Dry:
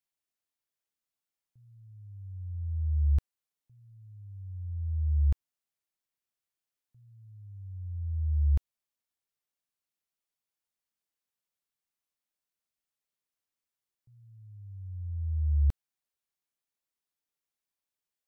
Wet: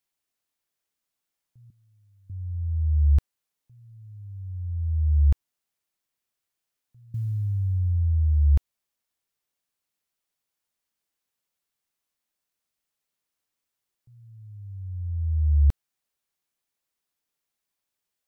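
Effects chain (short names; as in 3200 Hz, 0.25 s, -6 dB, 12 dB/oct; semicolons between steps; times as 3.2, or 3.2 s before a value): 1.7–2.3 Chebyshev high-pass 180 Hz, order 3; 7.14–8.39 fast leveller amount 70%; gain +6 dB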